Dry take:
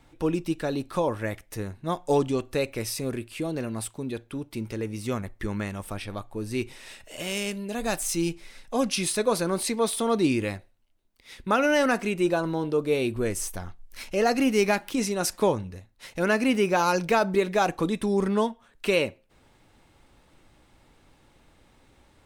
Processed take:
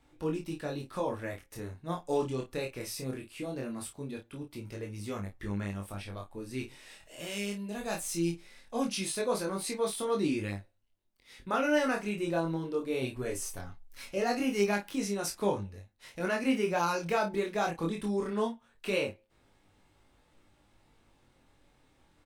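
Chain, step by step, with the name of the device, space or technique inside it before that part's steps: double-tracked vocal (doubling 30 ms -6.5 dB; chorus 0.2 Hz, delay 19.5 ms, depth 4.7 ms); 13.01–14.18 s: comb 7.2 ms, depth 56%; trim -5 dB

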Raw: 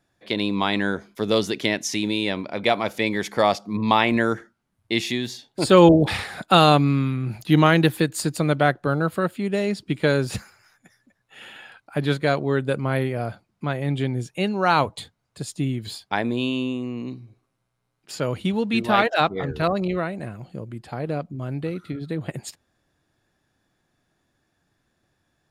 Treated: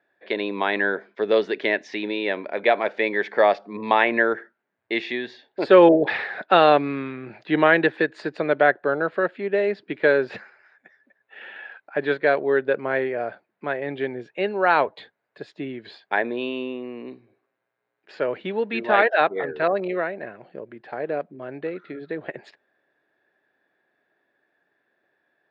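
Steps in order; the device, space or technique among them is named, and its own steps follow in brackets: phone earpiece (cabinet simulation 370–3300 Hz, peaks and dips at 410 Hz +6 dB, 600 Hz +4 dB, 1.2 kHz -4 dB, 1.7 kHz +8 dB, 3.1 kHz -5 dB)

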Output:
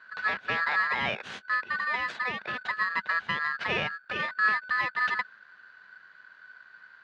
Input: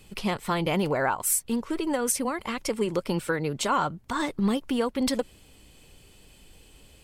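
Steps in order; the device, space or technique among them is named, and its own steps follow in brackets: ring modulator pedal into a guitar cabinet (polarity switched at an audio rate 1.5 kHz; cabinet simulation 100–3500 Hz, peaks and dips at 200 Hz +7 dB, 310 Hz -5 dB, 1.6 kHz +9 dB); trim -4.5 dB

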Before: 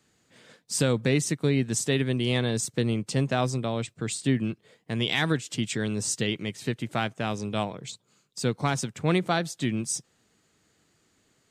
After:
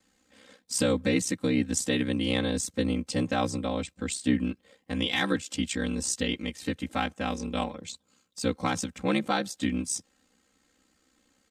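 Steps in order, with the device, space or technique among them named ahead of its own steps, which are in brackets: ring-modulated robot voice (ring modulator 32 Hz; comb 3.8 ms, depth 97%); trim -1 dB

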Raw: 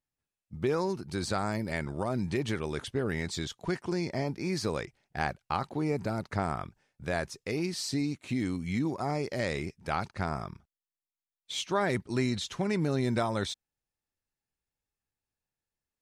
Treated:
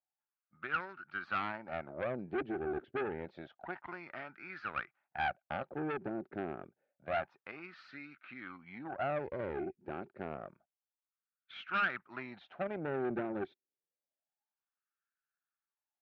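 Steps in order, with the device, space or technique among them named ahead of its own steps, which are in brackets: wah-wah guitar rig (wah-wah 0.28 Hz 370–1400 Hz, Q 5.4; valve stage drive 39 dB, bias 0.7; cabinet simulation 94–3600 Hz, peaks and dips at 100 Hz -5 dB, 450 Hz -9 dB, 1 kHz -9 dB, 1.5 kHz +7 dB, 2.5 kHz +4 dB); trim +11 dB

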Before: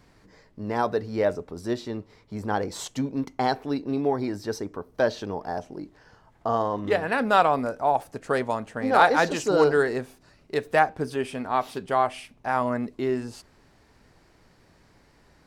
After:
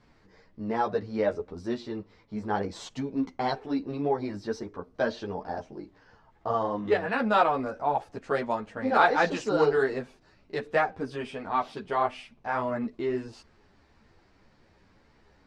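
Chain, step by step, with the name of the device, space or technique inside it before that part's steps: string-machine ensemble chorus (three-phase chorus; low-pass 5.1 kHz 12 dB/octave)

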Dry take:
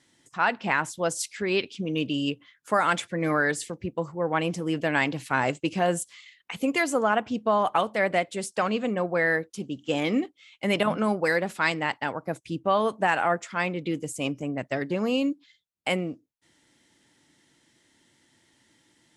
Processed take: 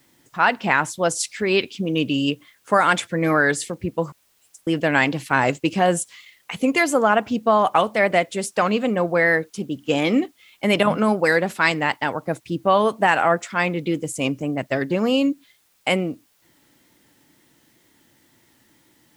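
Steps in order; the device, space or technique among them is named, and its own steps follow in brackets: 4.12–4.67 s: inverse Chebyshev high-pass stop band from 1.3 kHz, stop band 80 dB; plain cassette with noise reduction switched in (tape noise reduction on one side only decoder only; wow and flutter; white noise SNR 41 dB); trim +6 dB

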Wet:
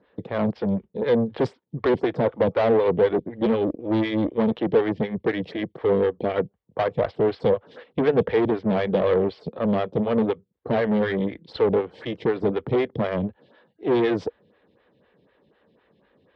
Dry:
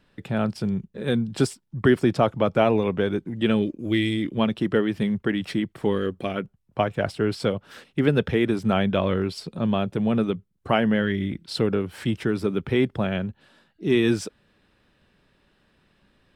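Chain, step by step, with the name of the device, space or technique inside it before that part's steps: vibe pedal into a guitar amplifier (lamp-driven phase shifter 4 Hz; valve stage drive 27 dB, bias 0.7; cabinet simulation 85–3600 Hz, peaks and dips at 480 Hz +9 dB, 1.4 kHz -5 dB, 2.6 kHz -6 dB); trim +8.5 dB

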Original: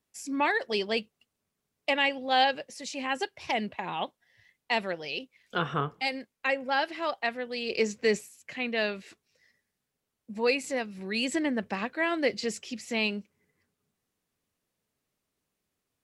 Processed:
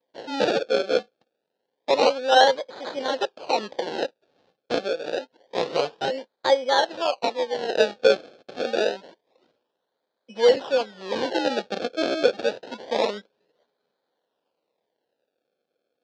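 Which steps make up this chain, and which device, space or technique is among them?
circuit-bent sampling toy (decimation with a swept rate 31×, swing 100% 0.27 Hz; cabinet simulation 440–5000 Hz, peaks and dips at 510 Hz +7 dB, 1.2 kHz -8 dB, 2.1 kHz -7 dB, 4.1 kHz +4 dB); trim +7.5 dB

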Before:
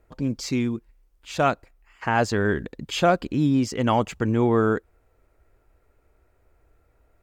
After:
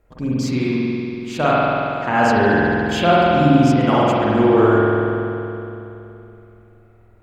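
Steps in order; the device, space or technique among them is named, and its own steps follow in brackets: dub delay into a spring reverb (filtered feedback delay 263 ms, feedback 66%, low-pass 1.6 kHz, level -18 dB; spring tank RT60 2.8 s, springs 47 ms, chirp 25 ms, DRR -7 dB)

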